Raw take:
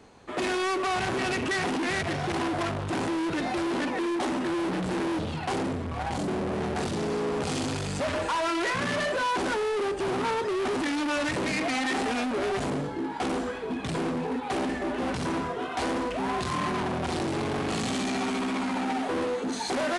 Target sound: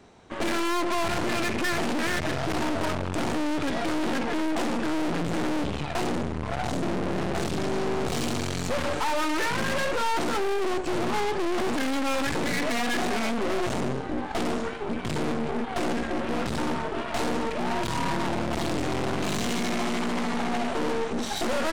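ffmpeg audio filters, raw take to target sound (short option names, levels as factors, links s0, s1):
-af "asetrate=40572,aresample=44100,aeval=exprs='0.0794*(cos(1*acos(clip(val(0)/0.0794,-1,1)))-cos(1*PI/2))+0.0224*(cos(4*acos(clip(val(0)/0.0794,-1,1)))-cos(4*PI/2))':c=same"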